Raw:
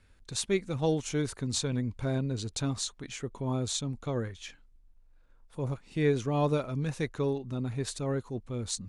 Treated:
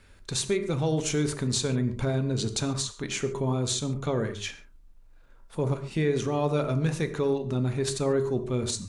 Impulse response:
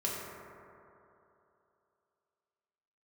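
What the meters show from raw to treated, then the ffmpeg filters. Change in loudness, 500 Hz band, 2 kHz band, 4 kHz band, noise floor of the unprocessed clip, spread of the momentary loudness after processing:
+4.0 dB, +4.5 dB, +4.5 dB, +4.5 dB, −60 dBFS, 5 LU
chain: -filter_complex "[0:a]alimiter=level_in=3dB:limit=-24dB:level=0:latency=1:release=177,volume=-3dB,asplit=2[link_01][link_02];[link_02]highpass=frequency=87:width=0.5412,highpass=frequency=87:width=1.3066[link_03];[1:a]atrim=start_sample=2205,atrim=end_sample=6615[link_04];[link_03][link_04]afir=irnorm=-1:irlink=0,volume=-7dB[link_05];[link_01][link_05]amix=inputs=2:normalize=0,volume=6dB"

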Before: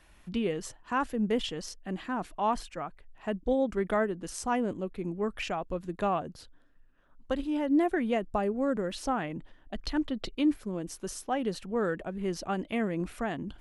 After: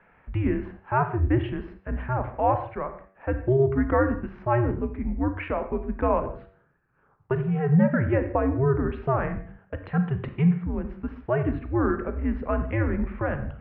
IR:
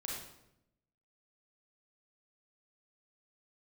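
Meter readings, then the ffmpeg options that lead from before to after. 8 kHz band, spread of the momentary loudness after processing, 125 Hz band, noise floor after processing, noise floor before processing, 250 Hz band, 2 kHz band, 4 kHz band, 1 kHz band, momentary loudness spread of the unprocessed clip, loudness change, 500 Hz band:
below −35 dB, 12 LU, +16.5 dB, −63 dBFS, −59 dBFS, +4.0 dB, +4.0 dB, below −10 dB, +4.0 dB, 10 LU, +5.5 dB, +5.0 dB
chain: -filter_complex "[0:a]highpass=frequency=150:width_type=q:width=0.5412,highpass=frequency=150:width_type=q:width=1.307,lowpass=frequency=2300:width_type=q:width=0.5176,lowpass=frequency=2300:width_type=q:width=0.7071,lowpass=frequency=2300:width_type=q:width=1.932,afreqshift=-130,bandreject=frequency=95.92:width_type=h:width=4,bandreject=frequency=191.84:width_type=h:width=4,bandreject=frequency=287.76:width_type=h:width=4,bandreject=frequency=383.68:width_type=h:width=4,bandreject=frequency=479.6:width_type=h:width=4,bandreject=frequency=575.52:width_type=h:width=4,bandreject=frequency=671.44:width_type=h:width=4,bandreject=frequency=767.36:width_type=h:width=4,bandreject=frequency=863.28:width_type=h:width=4,bandreject=frequency=959.2:width_type=h:width=4,bandreject=frequency=1055.12:width_type=h:width=4,bandreject=frequency=1151.04:width_type=h:width=4,bandreject=frequency=1246.96:width_type=h:width=4,bandreject=frequency=1342.88:width_type=h:width=4,bandreject=frequency=1438.8:width_type=h:width=4,bandreject=frequency=1534.72:width_type=h:width=4,bandreject=frequency=1630.64:width_type=h:width=4,bandreject=frequency=1726.56:width_type=h:width=4,bandreject=frequency=1822.48:width_type=h:width=4,bandreject=frequency=1918.4:width_type=h:width=4,bandreject=frequency=2014.32:width_type=h:width=4,bandreject=frequency=2110.24:width_type=h:width=4,bandreject=frequency=2206.16:width_type=h:width=4,bandreject=frequency=2302.08:width_type=h:width=4,bandreject=frequency=2398:width_type=h:width=4,bandreject=frequency=2493.92:width_type=h:width=4,bandreject=frequency=2589.84:width_type=h:width=4,bandreject=frequency=2685.76:width_type=h:width=4,asplit=2[link_01][link_02];[1:a]atrim=start_sample=2205,afade=type=out:start_time=0.24:duration=0.01,atrim=end_sample=11025[link_03];[link_02][link_03]afir=irnorm=-1:irlink=0,volume=-6dB[link_04];[link_01][link_04]amix=inputs=2:normalize=0,volume=4dB"

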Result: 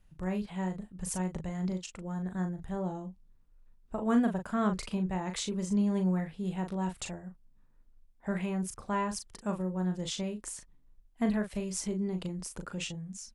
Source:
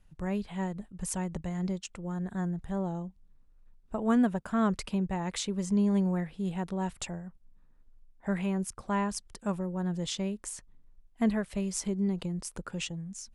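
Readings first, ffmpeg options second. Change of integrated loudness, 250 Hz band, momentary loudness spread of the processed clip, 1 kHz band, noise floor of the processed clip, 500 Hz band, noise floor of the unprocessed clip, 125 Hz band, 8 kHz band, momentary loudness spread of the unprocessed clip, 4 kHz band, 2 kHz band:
−1.5 dB, −1.5 dB, 11 LU, −1.0 dB, −62 dBFS, −1.0 dB, −62 dBFS, −1.5 dB, −1.0 dB, 11 LU, −1.0 dB, −1.0 dB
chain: -filter_complex "[0:a]asplit=2[link_01][link_02];[link_02]adelay=38,volume=-6.5dB[link_03];[link_01][link_03]amix=inputs=2:normalize=0,volume=-2dB"

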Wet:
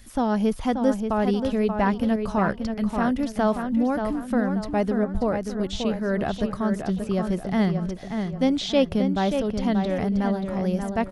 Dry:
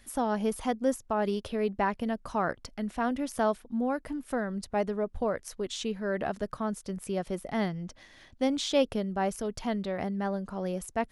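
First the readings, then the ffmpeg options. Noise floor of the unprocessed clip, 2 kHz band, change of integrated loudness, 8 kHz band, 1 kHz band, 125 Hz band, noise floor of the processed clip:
−58 dBFS, +4.5 dB, +7.0 dB, −2.0 dB, +4.5 dB, +10.5 dB, −37 dBFS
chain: -filter_complex "[0:a]acrossover=split=4700[link_01][link_02];[link_02]acompressor=threshold=-59dB:ratio=4:attack=1:release=60[link_03];[link_01][link_03]amix=inputs=2:normalize=0,bass=frequency=250:gain=8,treble=frequency=4000:gain=6,asplit=2[link_04][link_05];[link_05]adelay=582,lowpass=frequency=3600:poles=1,volume=-6dB,asplit=2[link_06][link_07];[link_07]adelay=582,lowpass=frequency=3600:poles=1,volume=0.4,asplit=2[link_08][link_09];[link_09]adelay=582,lowpass=frequency=3600:poles=1,volume=0.4,asplit=2[link_10][link_11];[link_11]adelay=582,lowpass=frequency=3600:poles=1,volume=0.4,asplit=2[link_12][link_13];[link_13]adelay=582,lowpass=frequency=3600:poles=1,volume=0.4[link_14];[link_04][link_06][link_08][link_10][link_12][link_14]amix=inputs=6:normalize=0,volume=3.5dB"

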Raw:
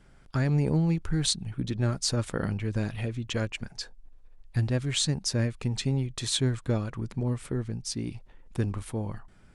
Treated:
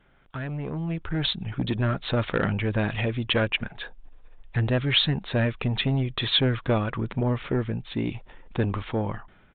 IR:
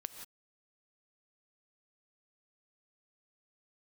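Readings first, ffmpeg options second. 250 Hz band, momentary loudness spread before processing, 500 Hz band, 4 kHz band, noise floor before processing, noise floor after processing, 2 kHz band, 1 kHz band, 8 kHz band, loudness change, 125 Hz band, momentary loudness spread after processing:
+2.5 dB, 9 LU, +5.5 dB, +5.5 dB, −55 dBFS, −56 dBFS, +9.0 dB, +8.0 dB, below −40 dB, +3.0 dB, +1.0 dB, 11 LU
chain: -af "aresample=8000,asoftclip=type=tanh:threshold=-23dB,aresample=44100,dynaudnorm=framelen=760:gausssize=3:maxgain=11dB,lowshelf=frequency=300:gain=-8.5,volume=1dB"

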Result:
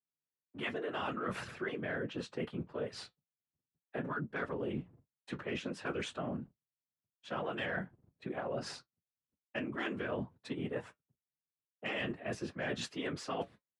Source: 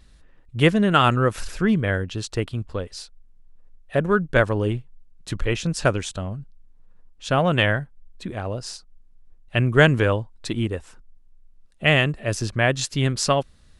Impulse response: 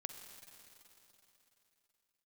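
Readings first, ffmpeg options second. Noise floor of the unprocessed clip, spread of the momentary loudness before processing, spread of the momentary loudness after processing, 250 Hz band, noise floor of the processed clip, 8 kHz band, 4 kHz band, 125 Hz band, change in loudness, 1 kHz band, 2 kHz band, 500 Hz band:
−52 dBFS, 17 LU, 9 LU, −16.0 dB, below −85 dBFS, −20.5 dB, −17.5 dB, −23.0 dB, −17.5 dB, −16.5 dB, −16.5 dB, −16.0 dB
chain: -filter_complex "[0:a]afftfilt=real='re*lt(hypot(re,im),0.891)':imag='im*lt(hypot(re,im),0.891)':win_size=1024:overlap=0.75,asplit=2[link_01][link_02];[link_02]adelay=17,volume=-11.5dB[link_03];[link_01][link_03]amix=inputs=2:normalize=0,agate=range=-47dB:threshold=-39dB:ratio=16:detection=peak,asoftclip=type=tanh:threshold=-10dB,afftfilt=real='hypot(re,im)*cos(2*PI*random(0))':imag='hypot(re,im)*sin(2*PI*random(1))':win_size=512:overlap=0.75,acrossover=split=150|3000[link_04][link_05][link_06];[link_05]acompressor=threshold=-36dB:ratio=2[link_07];[link_04][link_07][link_06]amix=inputs=3:normalize=0,acrossover=split=200 2800:gain=0.2 1 0.112[link_08][link_09][link_10];[link_08][link_09][link_10]amix=inputs=3:normalize=0,flanger=delay=7.2:depth=1.9:regen=-63:speed=0.46:shape=triangular,highpass=110,areverse,acompressor=threshold=-49dB:ratio=6,areverse,volume=13.5dB"

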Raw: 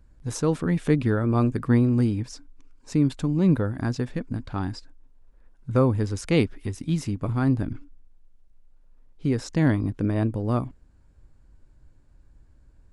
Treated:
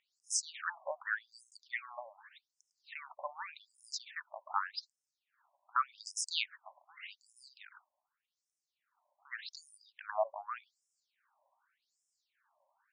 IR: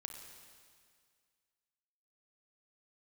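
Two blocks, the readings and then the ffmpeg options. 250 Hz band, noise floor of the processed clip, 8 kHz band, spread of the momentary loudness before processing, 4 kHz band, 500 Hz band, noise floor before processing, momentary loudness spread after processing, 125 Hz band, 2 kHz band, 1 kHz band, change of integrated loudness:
below −40 dB, below −85 dBFS, +1.0 dB, 11 LU, −0.5 dB, −17.0 dB, −56 dBFS, 21 LU, below −40 dB, −4.0 dB, −4.0 dB, −15.0 dB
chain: -af "lowshelf=frequency=450:gain=5.5,afftfilt=real='re*between(b*sr/1024,770*pow(7300/770,0.5+0.5*sin(2*PI*0.85*pts/sr))/1.41,770*pow(7300/770,0.5+0.5*sin(2*PI*0.85*pts/sr))*1.41)':imag='im*between(b*sr/1024,770*pow(7300/770,0.5+0.5*sin(2*PI*0.85*pts/sr))/1.41,770*pow(7300/770,0.5+0.5*sin(2*PI*0.85*pts/sr))*1.41)':win_size=1024:overlap=0.75,volume=3dB"

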